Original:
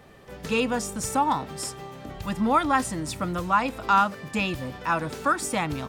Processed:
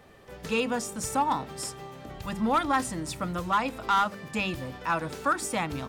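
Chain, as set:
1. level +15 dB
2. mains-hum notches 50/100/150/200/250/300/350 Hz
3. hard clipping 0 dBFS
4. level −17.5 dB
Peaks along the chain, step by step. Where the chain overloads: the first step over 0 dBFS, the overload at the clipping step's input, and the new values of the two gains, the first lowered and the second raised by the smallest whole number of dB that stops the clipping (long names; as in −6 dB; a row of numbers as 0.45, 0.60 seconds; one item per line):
+6.5, +6.5, 0.0, −17.5 dBFS
step 1, 6.5 dB
step 1 +8 dB, step 4 −10.5 dB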